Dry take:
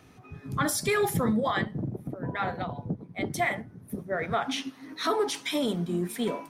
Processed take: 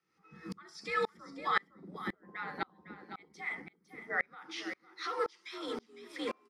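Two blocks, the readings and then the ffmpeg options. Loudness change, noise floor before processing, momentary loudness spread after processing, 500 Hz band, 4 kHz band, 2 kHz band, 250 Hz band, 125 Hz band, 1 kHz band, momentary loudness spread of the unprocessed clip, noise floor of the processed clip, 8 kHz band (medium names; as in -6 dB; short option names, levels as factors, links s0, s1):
-8.5 dB, -52 dBFS, 15 LU, -11.0 dB, -10.0 dB, -4.0 dB, -15.5 dB, -21.5 dB, -7.0 dB, 10 LU, -73 dBFS, -21.0 dB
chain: -filter_complex "[0:a]acrossover=split=6300[s0][s1];[s1]acompressor=threshold=0.002:ratio=4:attack=1:release=60[s2];[s0][s2]amix=inputs=2:normalize=0,aresample=32000,aresample=44100,alimiter=limit=0.0708:level=0:latency=1:release=470,afreqshift=60,equalizer=f=125:t=o:w=0.33:g=-11,equalizer=f=250:t=o:w=0.33:g=-11,equalizer=f=630:t=o:w=0.33:g=-11,equalizer=f=1250:t=o:w=0.33:g=9,equalizer=f=2000:t=o:w=0.33:g=9,equalizer=f=5000:t=o:w=0.33:g=11,equalizer=f=12500:t=o:w=0.33:g=-7,aecho=1:1:506:0.282,aeval=exprs='val(0)*pow(10,-33*if(lt(mod(-1.9*n/s,1),2*abs(-1.9)/1000),1-mod(-1.9*n/s,1)/(2*abs(-1.9)/1000),(mod(-1.9*n/s,1)-2*abs(-1.9)/1000)/(1-2*abs(-1.9)/1000))/20)':c=same,volume=1.26"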